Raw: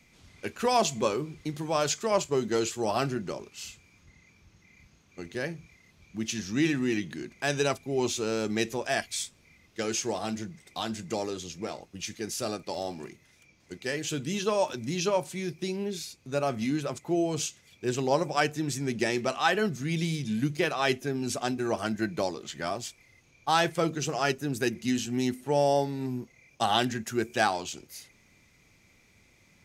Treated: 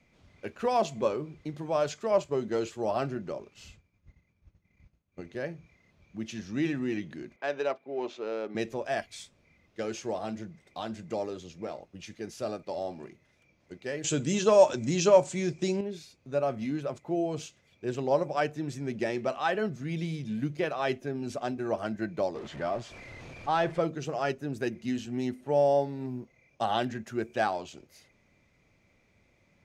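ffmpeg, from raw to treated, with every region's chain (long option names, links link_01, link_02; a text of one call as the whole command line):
ffmpeg -i in.wav -filter_complex "[0:a]asettb=1/sr,asplit=3[link_01][link_02][link_03];[link_01]atrim=end=3.544[link_04];[link_02]atrim=start=3.54:end=5.21,asetpts=PTS-STARTPTS,afade=type=in:duration=0.004:curve=qsin,afade=type=out:start_time=1.666:duration=0.004:curve=qsin,agate=range=-33dB:threshold=-52dB:ratio=3:release=100:detection=peak,lowshelf=frequency=160:gain=11[link_05];[link_03]atrim=start=5.206[link_06];[link_04][link_05]acrossfade=duration=0.004:curve1=hsin:curve2=qsin[link_07];[link_07][link_06]acrossfade=duration=0.004:curve1=qsin:curve2=hsin,asettb=1/sr,asplit=3[link_08][link_09][link_10];[link_08]atrim=end=7.364[link_11];[link_09]atrim=start=7.36:end=8.55,asetpts=PTS-STARTPTS,afade=type=in:duration=0.004:curve=qsin,afade=type=out:start_time=1.186:duration=0.004:curve=qsin,adynamicsmooth=sensitivity=3:basefreq=2600,highpass=370,lowpass=6700[link_12];[link_10]atrim=start=8.546[link_13];[link_11][link_12]acrossfade=duration=0.004:curve1=hsin:curve2=qsin[link_14];[link_14][link_13]acrossfade=duration=0.004:curve1=qsin:curve2=hsin,asettb=1/sr,asplit=3[link_15][link_16][link_17];[link_15]atrim=end=14.044[link_18];[link_16]atrim=start=14.04:end=15.81,asetpts=PTS-STARTPTS,afade=type=in:duration=0.004:curve=qsin,afade=type=out:start_time=1.766:duration=0.004:curve=qsin,acontrast=75,lowpass=frequency=7400:width_type=q:width=5.3[link_19];[link_17]atrim=start=15.806[link_20];[link_18][link_19]acrossfade=duration=0.004:curve1=hsin:curve2=qsin[link_21];[link_21][link_20]acrossfade=duration=0.004:curve1=qsin:curve2=hsin,asettb=1/sr,asplit=3[link_22][link_23][link_24];[link_22]atrim=end=22.354[link_25];[link_23]atrim=start=22.35:end=23.81,asetpts=PTS-STARTPTS,afade=type=in:duration=0.004:curve=qsin,afade=type=out:start_time=1.456:duration=0.004:curve=qsin,aeval=exprs='val(0)+0.5*0.02*sgn(val(0))':channel_layout=same,lowpass=9300,highshelf=frequency=5000:gain=-7.5[link_26];[link_24]atrim=start=23.806[link_27];[link_25][link_26]acrossfade=duration=0.004:curve1=hsin:curve2=qsin[link_28];[link_28][link_27]acrossfade=duration=0.004:curve1=qsin:curve2=hsin,lowpass=frequency=2100:poles=1,equalizer=frequency=590:width=3.1:gain=6,volume=-3.5dB" out.wav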